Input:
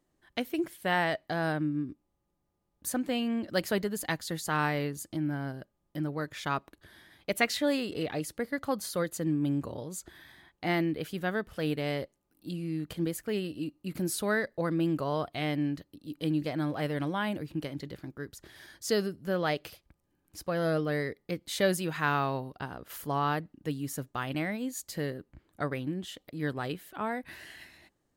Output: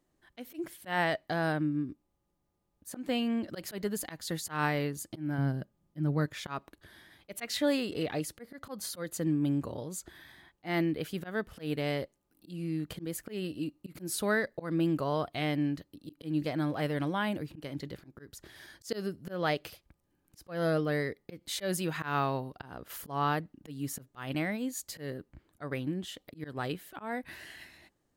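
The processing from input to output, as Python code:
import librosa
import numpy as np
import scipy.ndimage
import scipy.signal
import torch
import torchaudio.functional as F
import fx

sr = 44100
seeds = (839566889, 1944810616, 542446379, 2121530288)

y = fx.peak_eq(x, sr, hz=160.0, db=9.5, octaves=1.6, at=(5.38, 6.26))
y = fx.auto_swell(y, sr, attack_ms=155.0)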